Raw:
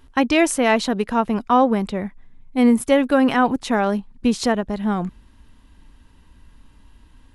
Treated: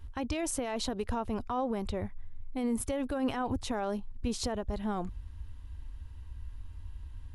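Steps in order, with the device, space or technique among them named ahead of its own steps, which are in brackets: car stereo with a boomy subwoofer (resonant low shelf 120 Hz +11 dB, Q 3; limiter -16.5 dBFS, peak gain reduction 12 dB); dynamic EQ 1900 Hz, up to -6 dB, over -42 dBFS, Q 0.99; gain -6.5 dB

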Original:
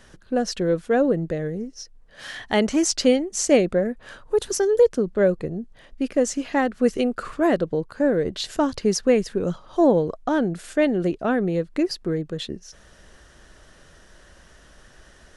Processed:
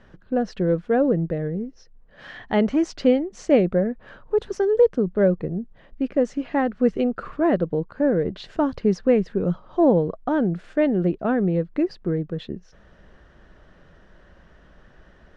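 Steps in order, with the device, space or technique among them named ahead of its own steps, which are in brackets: phone in a pocket (LPF 3700 Hz 12 dB/oct; bell 180 Hz +4.5 dB 0.47 oct; high shelf 2400 Hz -10 dB)

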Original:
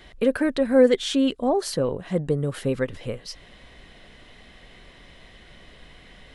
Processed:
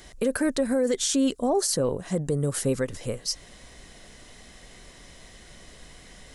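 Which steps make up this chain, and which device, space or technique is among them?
over-bright horn tweeter (resonant high shelf 4600 Hz +11.5 dB, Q 1.5; limiter -15.5 dBFS, peak gain reduction 11 dB)

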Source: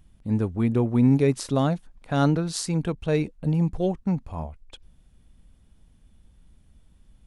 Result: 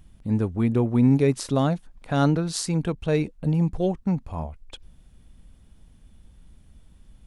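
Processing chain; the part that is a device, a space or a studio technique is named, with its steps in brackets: parallel compression (in parallel at -4 dB: compressor, threshold -40 dBFS, peak gain reduction 23.5 dB)

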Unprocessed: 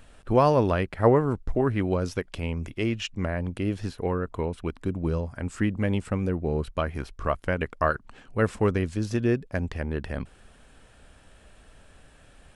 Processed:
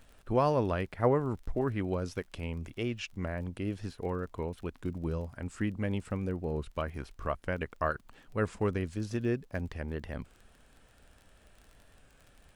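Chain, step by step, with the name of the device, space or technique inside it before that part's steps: warped LP (record warp 33 1/3 rpm, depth 100 cents; crackle 28/s -38 dBFS; pink noise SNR 44 dB); gain -7 dB

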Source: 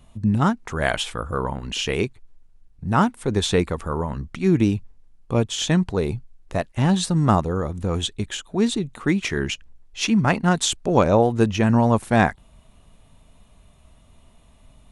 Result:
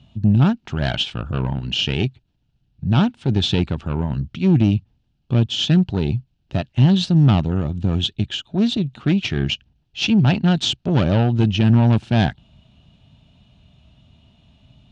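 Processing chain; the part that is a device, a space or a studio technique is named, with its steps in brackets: guitar amplifier (tube stage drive 16 dB, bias 0.6; tone controls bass +7 dB, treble +12 dB; speaker cabinet 84–4100 Hz, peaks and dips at 130 Hz +4 dB, 480 Hz -8 dB, 1100 Hz -9 dB, 2000 Hz -7 dB, 2900 Hz +6 dB); gain +2.5 dB

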